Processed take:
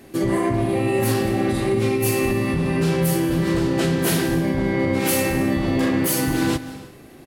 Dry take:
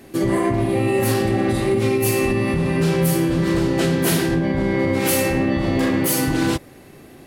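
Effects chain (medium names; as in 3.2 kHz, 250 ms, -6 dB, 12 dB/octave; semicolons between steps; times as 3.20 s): feedback delay 198 ms, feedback 45%, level -22 dB; on a send at -14 dB: reverberation, pre-delay 115 ms; on the sum: trim -1.5 dB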